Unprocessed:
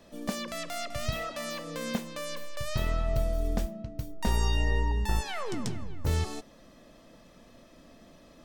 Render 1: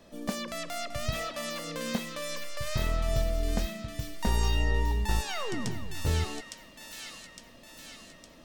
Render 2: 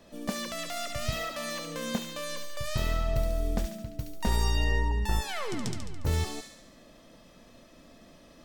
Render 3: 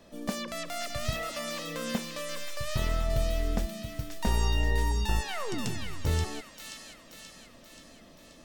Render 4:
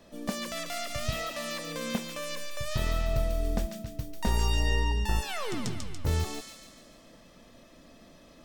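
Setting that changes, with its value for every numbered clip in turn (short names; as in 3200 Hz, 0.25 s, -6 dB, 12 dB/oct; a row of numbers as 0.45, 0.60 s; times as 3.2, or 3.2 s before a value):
thin delay, time: 860, 71, 530, 143 ms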